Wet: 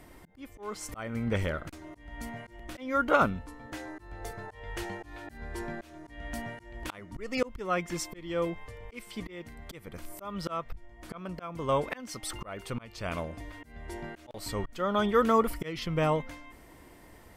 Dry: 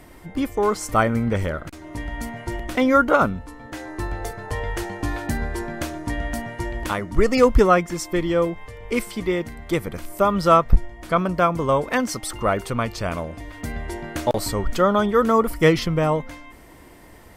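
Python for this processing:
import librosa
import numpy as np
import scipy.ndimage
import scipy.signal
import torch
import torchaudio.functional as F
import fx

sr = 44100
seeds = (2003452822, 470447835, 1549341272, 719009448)

y = fx.dynamic_eq(x, sr, hz=2800.0, q=1.1, threshold_db=-40.0, ratio=4.0, max_db=6)
y = fx.auto_swell(y, sr, attack_ms=405.0)
y = F.gain(torch.from_numpy(y), -6.5).numpy()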